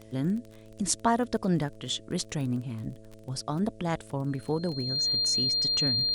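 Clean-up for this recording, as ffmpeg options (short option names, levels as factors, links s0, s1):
-af "adeclick=t=4,bandreject=f=109.5:t=h:w=4,bandreject=f=219:t=h:w=4,bandreject=f=328.5:t=h:w=4,bandreject=f=438:t=h:w=4,bandreject=f=547.5:t=h:w=4,bandreject=f=657:t=h:w=4,bandreject=f=4200:w=30,agate=range=0.0891:threshold=0.00794"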